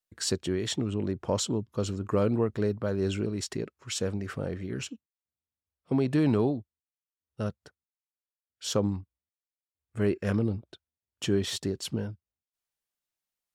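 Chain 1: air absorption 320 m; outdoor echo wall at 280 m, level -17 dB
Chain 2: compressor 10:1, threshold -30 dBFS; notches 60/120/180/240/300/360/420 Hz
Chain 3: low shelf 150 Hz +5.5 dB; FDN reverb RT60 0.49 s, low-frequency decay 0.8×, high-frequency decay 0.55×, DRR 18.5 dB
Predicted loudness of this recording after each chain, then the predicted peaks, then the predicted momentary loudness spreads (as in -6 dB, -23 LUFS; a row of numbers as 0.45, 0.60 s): -31.0, -36.5, -28.5 LUFS; -15.0, -20.5, -12.5 dBFS; 17, 10, 11 LU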